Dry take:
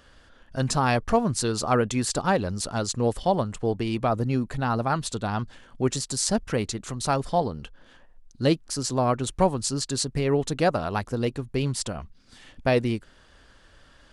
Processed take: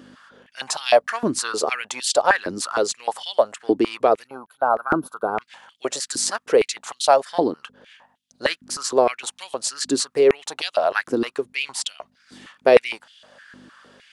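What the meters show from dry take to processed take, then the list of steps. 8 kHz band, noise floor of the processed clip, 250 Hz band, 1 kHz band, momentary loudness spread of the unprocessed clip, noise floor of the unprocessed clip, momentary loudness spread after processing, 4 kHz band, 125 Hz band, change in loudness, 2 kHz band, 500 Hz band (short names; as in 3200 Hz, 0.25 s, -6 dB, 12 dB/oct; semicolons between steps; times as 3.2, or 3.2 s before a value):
+3.0 dB, -65 dBFS, -1.5 dB, +4.0 dB, 7 LU, -56 dBFS, 11 LU, +5.5 dB, -16.5 dB, +4.0 dB, +7.5 dB, +6.5 dB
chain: hum 50 Hz, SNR 15 dB; spectral gain 4.27–5.42, 1600–9900 Hz -23 dB; stepped high-pass 6.5 Hz 310–3200 Hz; gain +3 dB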